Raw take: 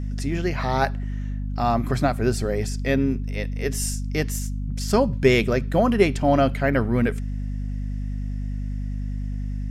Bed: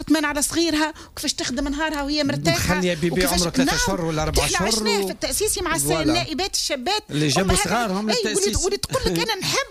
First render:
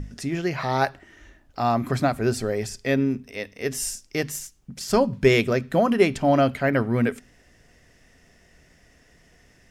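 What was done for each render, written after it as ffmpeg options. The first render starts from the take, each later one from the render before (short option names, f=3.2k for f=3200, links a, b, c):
-af "bandreject=f=50:t=h:w=6,bandreject=f=100:t=h:w=6,bandreject=f=150:t=h:w=6,bandreject=f=200:t=h:w=6,bandreject=f=250:t=h:w=6"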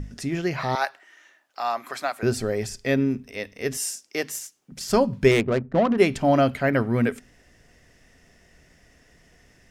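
-filter_complex "[0:a]asettb=1/sr,asplit=3[a][b][c];[a]atrim=end=0.754[d];[b]atrim=start=0.75:end=2.23,asetpts=PTS-STARTPTS,afade=t=in:d=0.004:c=qsin,afade=t=out:st=1.476:d=0.004:c=qsin,highpass=800[e];[c]atrim=start=2.226[f];[d][e]acrossfade=d=0.004:c1=hsin:c2=qsin[g];[g][f]acrossfade=d=0.004:c1=qsin:c2=hsin,asettb=1/sr,asplit=3[h][i][j];[h]atrim=end=3.774[k];[i]atrim=start=3.77:end=4.72,asetpts=PTS-STARTPTS,afade=t=in:d=0.004:c=qsin,afade=t=out:st=0.946:d=0.004:c=qsin,highpass=320[l];[j]atrim=start=4.716[m];[k][l]acrossfade=d=0.004:c1=hsin:c2=qsin[n];[n][m]acrossfade=d=0.004:c1=qsin:c2=hsin,asettb=1/sr,asplit=3[o][p][q];[o]atrim=end=5.314[r];[p]atrim=start=5.31:end=5.98,asetpts=PTS-STARTPTS,afade=t=in:d=0.004:c=qsin,afade=t=out:st=0.666:d=0.004:c=qsin,adynamicsmooth=sensitivity=1:basefreq=510[s];[q]atrim=start=5.976[t];[r][s]acrossfade=d=0.004:c1=hsin:c2=qsin[u];[u][t]acrossfade=d=0.004:c1=qsin:c2=hsin"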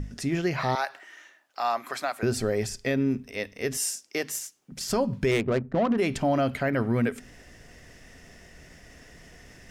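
-af "areverse,acompressor=mode=upward:threshold=-41dB:ratio=2.5,areverse,alimiter=limit=-16dB:level=0:latency=1:release=87"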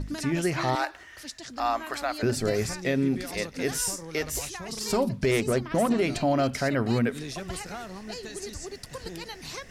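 -filter_complex "[1:a]volume=-17dB[a];[0:a][a]amix=inputs=2:normalize=0"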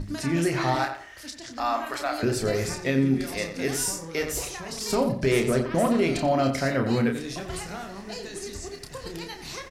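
-filter_complex "[0:a]asplit=2[a][b];[b]adelay=30,volume=-6dB[c];[a][c]amix=inputs=2:normalize=0,asplit=2[d][e];[e]adelay=89,lowpass=f=2.3k:p=1,volume=-8dB,asplit=2[f][g];[g]adelay=89,lowpass=f=2.3k:p=1,volume=0.26,asplit=2[h][i];[i]adelay=89,lowpass=f=2.3k:p=1,volume=0.26[j];[d][f][h][j]amix=inputs=4:normalize=0"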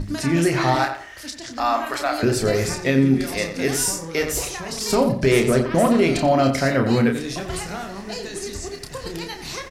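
-af "volume=5.5dB"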